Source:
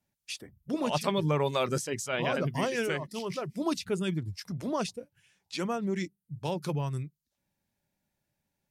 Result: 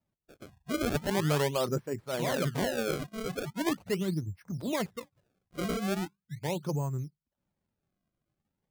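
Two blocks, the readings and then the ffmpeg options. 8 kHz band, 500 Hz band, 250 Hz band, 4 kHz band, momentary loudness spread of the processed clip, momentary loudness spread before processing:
−1.0 dB, −1.0 dB, −0.5 dB, −1.5 dB, 10 LU, 11 LU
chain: -af "lowpass=1200,acrusher=samples=28:mix=1:aa=0.000001:lfo=1:lforange=44.8:lforate=0.4"

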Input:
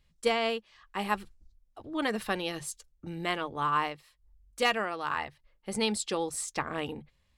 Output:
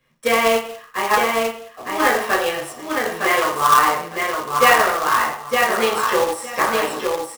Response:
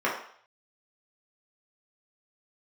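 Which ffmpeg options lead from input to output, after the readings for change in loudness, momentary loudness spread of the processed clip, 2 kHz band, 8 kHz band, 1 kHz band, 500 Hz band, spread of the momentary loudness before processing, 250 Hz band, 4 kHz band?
+13.5 dB, 10 LU, +15.5 dB, +11.5 dB, +16.0 dB, +14.0 dB, 14 LU, +7.5 dB, +10.0 dB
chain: -filter_complex "[0:a]highshelf=frequency=7900:gain=4.5,aecho=1:1:910|1820|2730:0.631|0.114|0.0204,acrossover=split=340|980|6200[link_01][link_02][link_03][link_04];[link_01]acompressor=threshold=-48dB:ratio=6[link_05];[link_05][link_02][link_03][link_04]amix=inputs=4:normalize=0[link_06];[1:a]atrim=start_sample=2205,afade=type=out:start_time=0.42:duration=0.01,atrim=end_sample=18963[link_07];[link_06][link_07]afir=irnorm=-1:irlink=0,acrusher=bits=2:mode=log:mix=0:aa=0.000001"

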